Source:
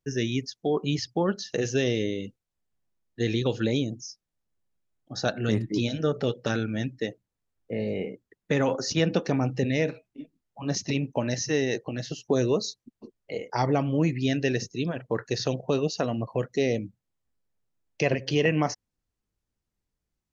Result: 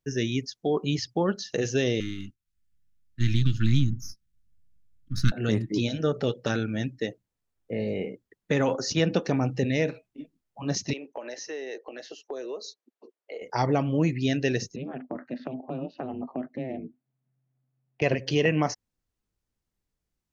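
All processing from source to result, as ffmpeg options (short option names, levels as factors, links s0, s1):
-filter_complex "[0:a]asettb=1/sr,asplit=3[s0][s1][s2];[s0]atrim=end=2.004[s3];[s1]atrim=start=2:end=5.32,asetpts=PTS-STARTPTS,afade=t=in:d=0.004:c=qsin,afade=t=out:st=3.316:d=0.004:c=qsin,aeval=exprs='if(lt(val(0),0),0.447*val(0),val(0))':c=same,asubboost=boost=11:cutoff=150,asuperstop=centerf=650:order=12:qfactor=0.73[s4];[s2]atrim=start=5.316[s5];[s3][s4]acrossfade=d=0.004:c1=hsin:c2=qsin[s6];[s6][s5]acrossfade=d=0.004:c1=qsin:c2=hsin,asettb=1/sr,asplit=3[s7][s8][s9];[s7]atrim=end=10.934[s10];[s8]atrim=start=10.93:end=13.42,asetpts=PTS-STARTPTS,afade=t=in:d=0.004:c=qsin,afade=t=out:st=2.486:d=0.004:c=qsin,highpass=f=370:w=0.5412,highpass=f=370:w=1.3066,highshelf=f=3800:g=-11.5,acompressor=threshold=0.02:ratio=3:attack=3.2:release=140:knee=1:detection=peak[s11];[s9]atrim=start=13.416[s12];[s10][s11]acrossfade=d=0.004:c1=hsin:c2=qsin[s13];[s13][s12]acrossfade=d=0.004:c1=qsin:c2=hsin,asettb=1/sr,asplit=3[s14][s15][s16];[s14]atrim=end=14.764[s17];[s15]atrim=start=14.76:end=18.02,asetpts=PTS-STARTPTS,afade=t=in:d=0.004:c=qsin,afade=t=out:st=3.256:d=0.004:c=qsin,acompressor=threshold=0.02:ratio=2.5:attack=3.2:release=140:knee=1:detection=peak,aeval=exprs='val(0)*sin(2*PI*130*n/s)':c=same,highpass=f=120:w=0.5412,highpass=f=120:w=1.3066,equalizer=f=150:t=q:w=4:g=9,equalizer=f=250:t=q:w=4:g=10,equalizer=f=700:t=q:w=4:g=7,lowpass=f=2700:w=0.5412,lowpass=f=2700:w=1.3066[s18];[s16]atrim=start=18.016[s19];[s17][s18]acrossfade=d=0.004:c1=hsin:c2=qsin[s20];[s20][s19]acrossfade=d=0.004:c1=qsin:c2=hsin"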